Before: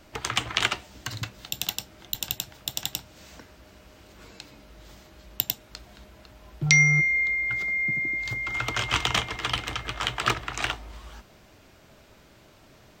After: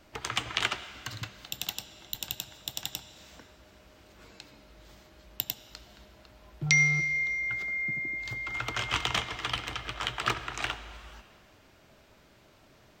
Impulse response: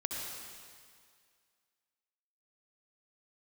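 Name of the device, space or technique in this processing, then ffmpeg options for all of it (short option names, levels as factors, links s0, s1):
filtered reverb send: -filter_complex "[0:a]asplit=2[s0][s1];[s1]highpass=f=390:p=1,lowpass=6200[s2];[1:a]atrim=start_sample=2205[s3];[s2][s3]afir=irnorm=-1:irlink=0,volume=0.266[s4];[s0][s4]amix=inputs=2:normalize=0,volume=0.501"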